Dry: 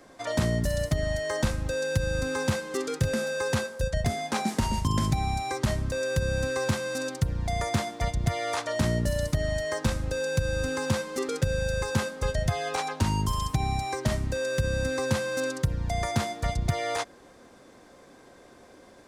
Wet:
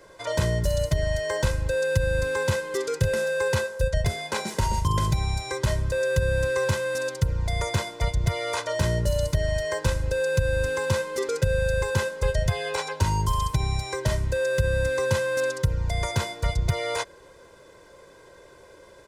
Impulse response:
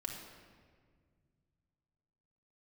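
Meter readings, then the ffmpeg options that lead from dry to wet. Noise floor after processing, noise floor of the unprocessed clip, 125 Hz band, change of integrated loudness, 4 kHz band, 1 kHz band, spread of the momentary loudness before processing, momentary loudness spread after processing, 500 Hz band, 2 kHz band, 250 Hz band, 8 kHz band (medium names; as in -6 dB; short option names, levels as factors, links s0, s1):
-51 dBFS, -53 dBFS, +3.0 dB, +2.5 dB, +2.0 dB, +0.5 dB, 3 LU, 4 LU, +4.0 dB, +3.5 dB, -4.0 dB, +1.0 dB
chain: -af "aecho=1:1:2:0.79"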